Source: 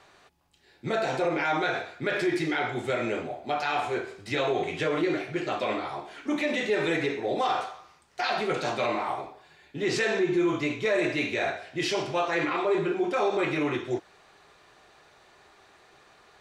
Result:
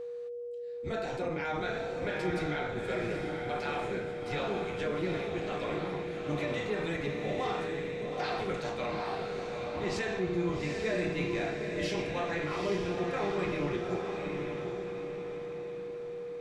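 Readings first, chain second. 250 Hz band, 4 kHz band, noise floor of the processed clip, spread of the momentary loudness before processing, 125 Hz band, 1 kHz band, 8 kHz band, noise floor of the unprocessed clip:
-5.5 dB, -7.0 dB, -40 dBFS, 7 LU, +0.5 dB, -7.0 dB, -7.0 dB, -59 dBFS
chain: octaver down 1 oct, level +1 dB; diffused feedback echo 0.832 s, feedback 47%, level -3.5 dB; whine 480 Hz -28 dBFS; gain -9 dB

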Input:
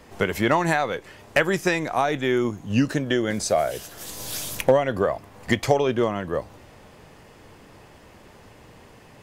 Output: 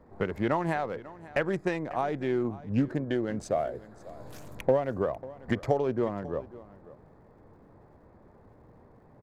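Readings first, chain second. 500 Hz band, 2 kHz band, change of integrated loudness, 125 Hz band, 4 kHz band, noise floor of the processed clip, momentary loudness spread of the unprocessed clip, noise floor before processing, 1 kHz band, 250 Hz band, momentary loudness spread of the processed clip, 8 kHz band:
-6.5 dB, -11.5 dB, -6.5 dB, -5.5 dB, -16.5 dB, -57 dBFS, 11 LU, -50 dBFS, -8.0 dB, -5.5 dB, 18 LU, under -20 dB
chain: Wiener smoothing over 15 samples; crackle 300/s -55 dBFS; high shelf 2000 Hz -11 dB; echo 0.544 s -18.5 dB; Doppler distortion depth 0.13 ms; gain -5.5 dB

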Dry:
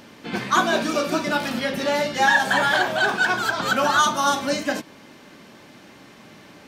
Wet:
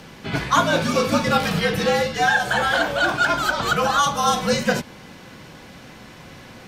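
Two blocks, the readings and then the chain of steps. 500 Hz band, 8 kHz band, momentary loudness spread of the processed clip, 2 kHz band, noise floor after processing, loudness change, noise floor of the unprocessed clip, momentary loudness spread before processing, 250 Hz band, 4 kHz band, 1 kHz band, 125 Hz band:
+2.5 dB, +1.0 dB, 4 LU, -0.5 dB, -43 dBFS, +1.0 dB, -47 dBFS, 8 LU, +2.0 dB, +1.0 dB, +1.0 dB, +9.0 dB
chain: vocal rider within 3 dB 0.5 s; frequency shift -67 Hz; gain +1.5 dB

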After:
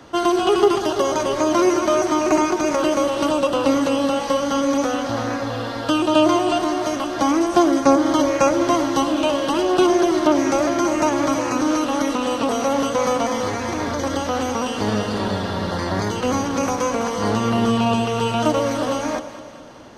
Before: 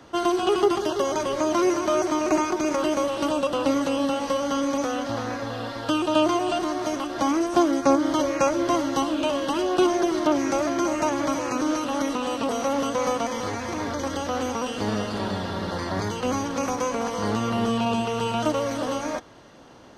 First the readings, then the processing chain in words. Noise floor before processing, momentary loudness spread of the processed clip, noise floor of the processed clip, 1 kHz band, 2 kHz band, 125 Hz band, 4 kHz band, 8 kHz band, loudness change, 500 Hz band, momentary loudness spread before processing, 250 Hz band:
-33 dBFS, 7 LU, -28 dBFS, +5.0 dB, +5.0 dB, +6.0 dB, +5.0 dB, +5.0 dB, +5.0 dB, +5.0 dB, 7 LU, +5.0 dB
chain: echo with dull and thin repeats by turns 0.103 s, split 820 Hz, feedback 74%, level -10.5 dB; gain +4.5 dB

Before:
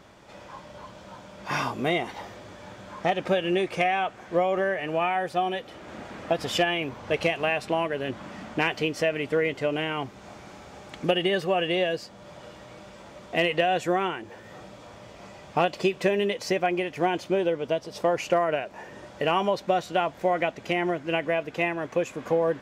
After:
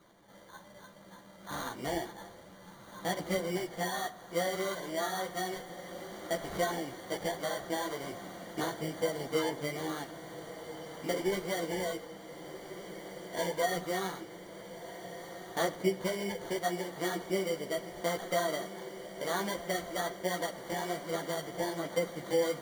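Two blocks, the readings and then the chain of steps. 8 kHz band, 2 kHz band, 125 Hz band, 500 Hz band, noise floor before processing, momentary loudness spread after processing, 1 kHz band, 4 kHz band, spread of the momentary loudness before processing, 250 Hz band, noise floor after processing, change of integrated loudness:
+3.0 dB, -9.5 dB, -7.5 dB, -8.5 dB, -47 dBFS, 14 LU, -9.5 dB, -7.5 dB, 20 LU, -7.5 dB, -54 dBFS, -9.0 dB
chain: nonlinear frequency compression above 1200 Hz 1.5:1; HPF 100 Hz; sample-and-hold 17×; chorus voices 4, 1.2 Hz, delay 13 ms, depth 3 ms; diffused feedback echo 1.51 s, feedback 67%, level -12.5 dB; shoebox room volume 2900 m³, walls furnished, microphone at 0.76 m; gain -6.5 dB

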